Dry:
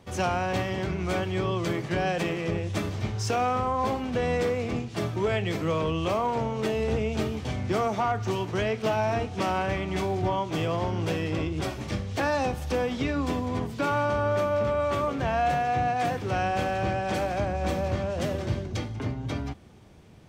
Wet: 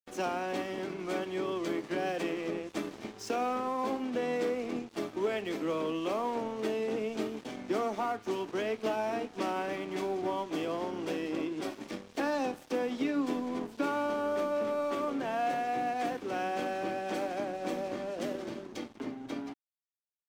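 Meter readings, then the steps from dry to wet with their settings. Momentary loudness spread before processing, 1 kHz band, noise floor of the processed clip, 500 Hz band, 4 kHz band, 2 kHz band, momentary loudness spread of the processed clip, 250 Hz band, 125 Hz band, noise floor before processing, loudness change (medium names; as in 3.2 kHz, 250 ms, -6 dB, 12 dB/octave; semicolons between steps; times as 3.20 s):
5 LU, -6.5 dB, -56 dBFS, -5.0 dB, -7.0 dB, -7.0 dB, 7 LU, -4.0 dB, -20.5 dB, -38 dBFS, -6.0 dB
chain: ladder high-pass 230 Hz, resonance 45%; crossover distortion -51.5 dBFS; trim +2.5 dB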